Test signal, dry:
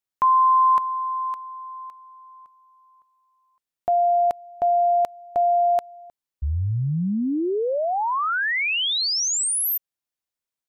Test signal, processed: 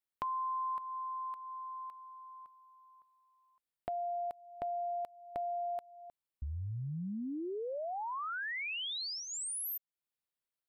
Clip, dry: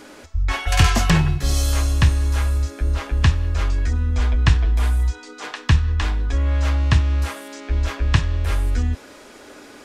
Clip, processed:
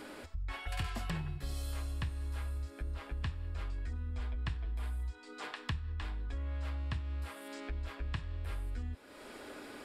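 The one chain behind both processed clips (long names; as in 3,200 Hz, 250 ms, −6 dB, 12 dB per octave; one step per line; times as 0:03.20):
parametric band 6,200 Hz −12 dB 0.34 octaves
downward compressor 2.5 to 1, threshold −38 dBFS
level −5 dB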